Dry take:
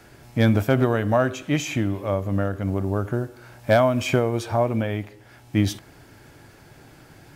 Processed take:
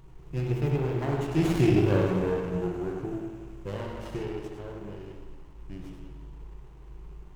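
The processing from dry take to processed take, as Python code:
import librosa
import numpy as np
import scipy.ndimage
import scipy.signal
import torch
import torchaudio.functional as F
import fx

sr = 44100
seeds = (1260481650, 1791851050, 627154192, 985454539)

p1 = fx.doppler_pass(x, sr, speed_mps=34, closest_m=9.9, pass_at_s=1.85)
p2 = fx.peak_eq(p1, sr, hz=1200.0, db=-7.5, octaves=1.3)
p3 = fx.dmg_noise_colour(p2, sr, seeds[0], colour='brown', level_db=-51.0)
p4 = fx.ripple_eq(p3, sr, per_octave=0.72, db=15)
p5 = p4 + fx.echo_single(p4, sr, ms=100, db=-6.0, dry=0)
p6 = fx.rev_spring(p5, sr, rt60_s=1.6, pass_ms=(39, 59), chirp_ms=55, drr_db=0.5)
y = fx.running_max(p6, sr, window=17)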